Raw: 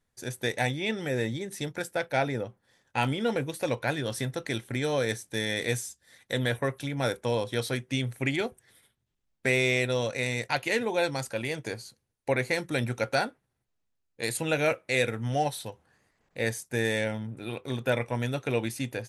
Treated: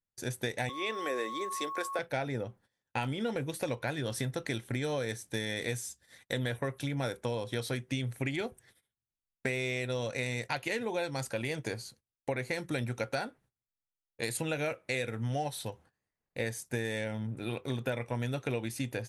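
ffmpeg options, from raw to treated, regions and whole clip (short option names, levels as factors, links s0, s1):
-filter_complex "[0:a]asettb=1/sr,asplit=3[s0][s1][s2];[s0]atrim=end=0.694[s3];[s1]atrim=start=0.69:end=1.99,asetpts=PTS-STARTPTS,afade=t=in:d=0.004:c=qsin,afade=t=out:st=1.296:d=0.004:c=qsin,highpass=f=310:w=0.5412,highpass=f=310:w=1.3066,aeval=exprs='val(0)+0.0178*sin(2*PI*1100*n/s)':c=same,aeval=exprs='val(0)*gte(abs(val(0)),0.00188)':c=same[s4];[s2]atrim=start=1.986[s5];[s3][s4]acrossfade=d=0.004:c1=hsin:c2=qsin[s6];[s6][s5]acrossfade=d=0.004:c1=qsin:c2=hsin,agate=range=0.1:threshold=0.00141:ratio=16:detection=peak,lowshelf=f=160:g=3.5,acompressor=threshold=0.0316:ratio=6"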